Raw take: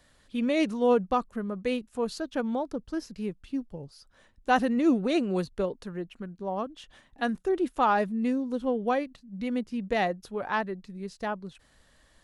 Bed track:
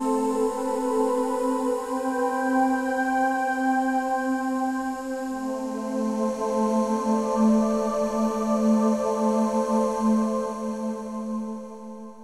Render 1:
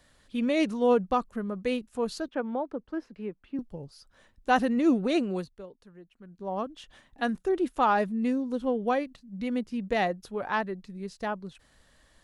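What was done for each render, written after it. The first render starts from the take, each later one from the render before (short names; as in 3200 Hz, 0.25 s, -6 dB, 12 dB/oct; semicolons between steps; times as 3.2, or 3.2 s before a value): 2.28–3.59 three-band isolator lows -12 dB, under 230 Hz, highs -22 dB, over 2700 Hz; 5.21–6.56 dip -15 dB, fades 0.37 s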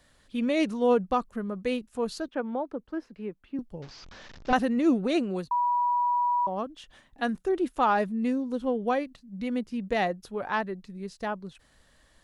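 3.82–4.53 delta modulation 32 kbps, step -41 dBFS; 5.51–6.47 bleep 972 Hz -22 dBFS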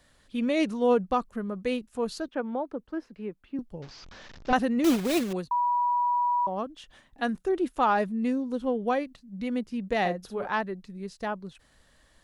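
4.84–5.33 block floating point 3-bit; 10–10.47 doubler 50 ms -7 dB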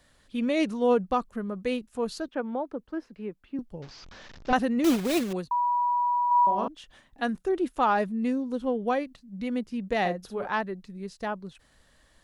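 6.27–6.68 flutter echo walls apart 6.9 m, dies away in 0.7 s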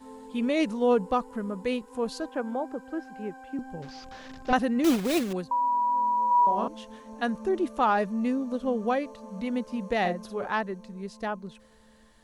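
add bed track -21.5 dB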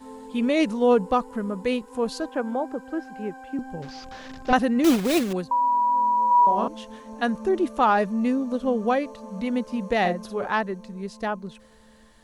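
gain +4 dB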